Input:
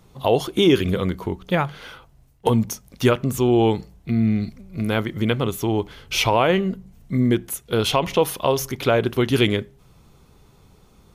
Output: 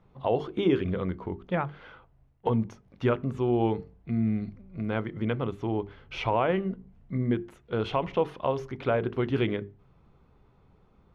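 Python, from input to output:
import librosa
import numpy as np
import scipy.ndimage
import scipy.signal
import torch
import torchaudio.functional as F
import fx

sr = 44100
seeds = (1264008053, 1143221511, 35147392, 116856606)

y = scipy.signal.sosfilt(scipy.signal.butter(2, 2000.0, 'lowpass', fs=sr, output='sos'), x)
y = fx.hum_notches(y, sr, base_hz=50, count=9)
y = y * librosa.db_to_amplitude(-7.0)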